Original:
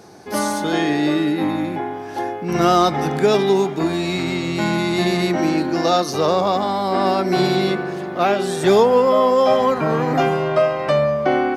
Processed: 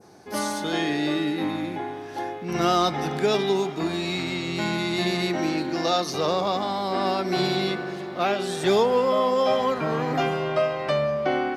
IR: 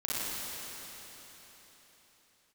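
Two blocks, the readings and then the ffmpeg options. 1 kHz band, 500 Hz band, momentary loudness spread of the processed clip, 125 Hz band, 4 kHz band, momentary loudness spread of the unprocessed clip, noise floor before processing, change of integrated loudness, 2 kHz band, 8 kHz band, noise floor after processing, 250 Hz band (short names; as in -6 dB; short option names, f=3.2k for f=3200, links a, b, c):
-6.5 dB, -6.5 dB, 8 LU, -7.0 dB, -2.0 dB, 8 LU, -29 dBFS, -6.5 dB, -4.5 dB, -5.0 dB, -35 dBFS, -7.0 dB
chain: -filter_complex "[0:a]adynamicequalizer=threshold=0.0126:dfrequency=3500:dqfactor=0.76:tfrequency=3500:tqfactor=0.76:attack=5:release=100:ratio=0.375:range=2.5:mode=boostabove:tftype=bell,asplit=2[a][b];[1:a]atrim=start_sample=2205,asetrate=30429,aresample=44100,adelay=55[c];[b][c]afir=irnorm=-1:irlink=0,volume=-28dB[d];[a][d]amix=inputs=2:normalize=0,volume=-7dB"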